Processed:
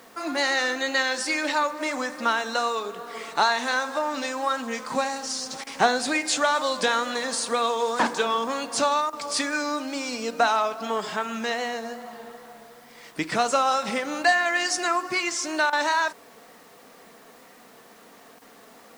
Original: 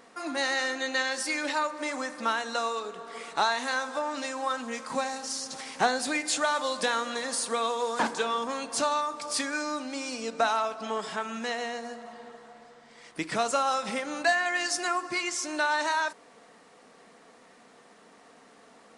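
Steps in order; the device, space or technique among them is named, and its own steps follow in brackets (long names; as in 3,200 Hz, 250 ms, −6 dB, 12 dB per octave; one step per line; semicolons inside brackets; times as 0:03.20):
worn cassette (low-pass filter 8,500 Hz 12 dB per octave; tape wow and flutter; tape dropouts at 0:05.64/0:09.10/0:15.70/0:18.39, 26 ms −12 dB; white noise bed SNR 32 dB)
level +4.5 dB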